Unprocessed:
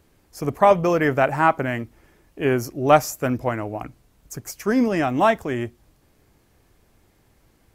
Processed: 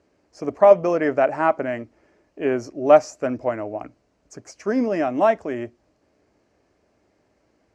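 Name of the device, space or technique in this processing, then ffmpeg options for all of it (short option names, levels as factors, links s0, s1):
car door speaker: -af "highpass=85,equalizer=f=91:t=q:w=4:g=-5,equalizer=f=140:t=q:w=4:g=-9,equalizer=f=290:t=q:w=4:g=4,equalizer=f=420:t=q:w=4:g=3,equalizer=f=610:t=q:w=4:g=9,equalizer=f=3500:t=q:w=4:g=-8,lowpass=f=6600:w=0.5412,lowpass=f=6600:w=1.3066,volume=0.596"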